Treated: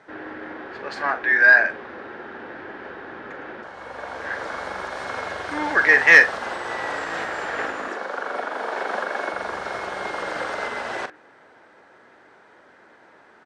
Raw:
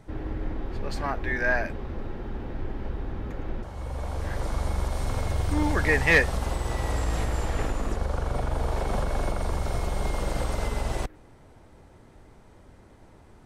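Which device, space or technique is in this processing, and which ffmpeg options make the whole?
intercom: -filter_complex "[0:a]highpass=400,lowpass=4800,equalizer=f=1600:t=o:w=0.59:g=11,asoftclip=type=tanh:threshold=0.501,asplit=2[s0][s1];[s1]adelay=42,volume=0.282[s2];[s0][s2]amix=inputs=2:normalize=0,asettb=1/sr,asplit=3[s3][s4][s5];[s3]atrim=end=7.884[s6];[s4]atrim=start=7.88:end=9.34,asetpts=PTS-STARTPTS,afade=t=in:d=0.004:c=qsin,afade=t=out:st=1.456:d=0.004:c=qsin,highpass=f=200:w=0.5412,highpass=f=200:w=1.3066[s7];[s5]atrim=start=9.336[s8];[s6][s7]acrossfade=d=0.004:c1=hsin:c2=qsin[s9];[s9][s8]acrossfade=d=0.004:c1=qsin:c2=hsin,volume=1.58"

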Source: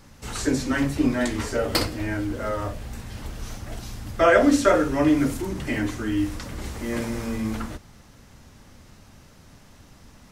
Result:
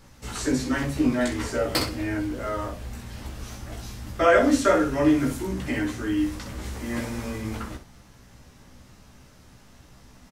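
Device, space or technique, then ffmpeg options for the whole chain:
slapback doubling: -filter_complex "[0:a]asplit=3[s0][s1][s2];[s1]adelay=16,volume=0.631[s3];[s2]adelay=63,volume=0.316[s4];[s0][s3][s4]amix=inputs=3:normalize=0,volume=0.708"

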